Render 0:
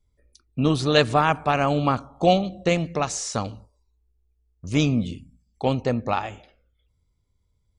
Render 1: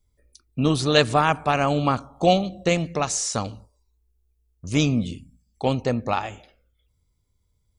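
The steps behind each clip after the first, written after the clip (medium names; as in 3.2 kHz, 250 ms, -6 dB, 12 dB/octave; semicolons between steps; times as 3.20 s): treble shelf 6.9 kHz +9 dB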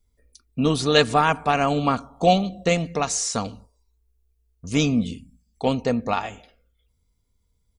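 comb 4.3 ms, depth 37%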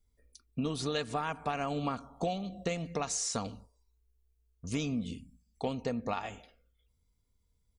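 compression 10:1, threshold -24 dBFS, peak gain reduction 13.5 dB; trim -5.5 dB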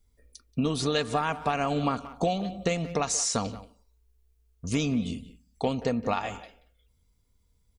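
speakerphone echo 180 ms, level -14 dB; trim +6.5 dB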